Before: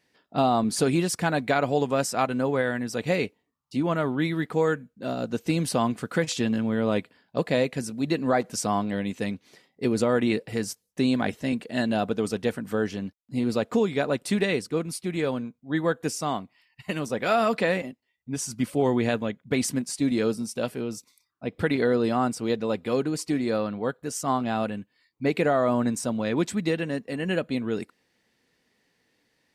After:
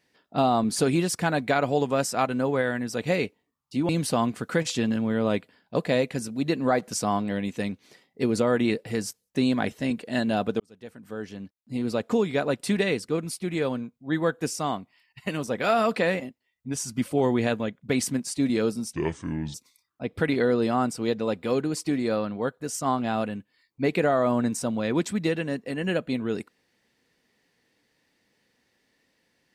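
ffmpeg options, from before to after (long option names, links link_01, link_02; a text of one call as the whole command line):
ffmpeg -i in.wav -filter_complex "[0:a]asplit=5[link_01][link_02][link_03][link_04][link_05];[link_01]atrim=end=3.892[link_06];[link_02]atrim=start=5.508:end=12.22,asetpts=PTS-STARTPTS,afade=type=out:start_time=6.708:duration=0.004:curve=hsin[link_07];[link_03]atrim=start=12.22:end=20.554,asetpts=PTS-STARTPTS,afade=type=in:duration=1.64[link_08];[link_04]atrim=start=20.55:end=20.96,asetpts=PTS-STARTPTS,asetrate=29547,aresample=44100[link_09];[link_05]atrim=start=20.956[link_10];[link_07][link_08]concat=n=2:v=0:a=1[link_11];[link_06][link_11]acrossfade=duration=0.004:curve1=hsin:curve2=hsin[link_12];[link_12][link_09]acrossfade=duration=0.004:curve1=hsin:curve2=hsin[link_13];[link_13][link_10]acrossfade=duration=0.004:curve1=hsin:curve2=hsin" out.wav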